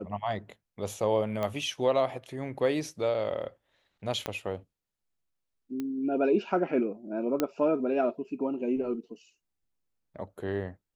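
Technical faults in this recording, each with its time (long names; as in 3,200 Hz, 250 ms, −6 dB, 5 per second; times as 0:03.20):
0:01.43: click −19 dBFS
0:04.26: click −16 dBFS
0:05.80: click −22 dBFS
0:07.40: click −13 dBFS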